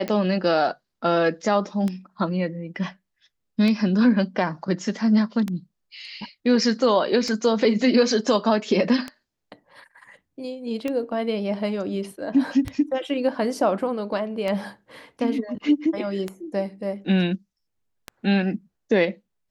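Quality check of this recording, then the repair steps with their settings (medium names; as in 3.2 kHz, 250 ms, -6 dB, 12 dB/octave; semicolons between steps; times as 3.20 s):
tick 33 1/3 rpm -14 dBFS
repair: de-click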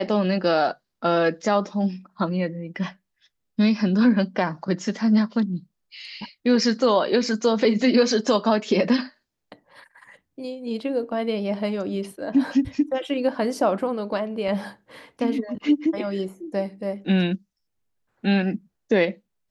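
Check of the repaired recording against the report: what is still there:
nothing left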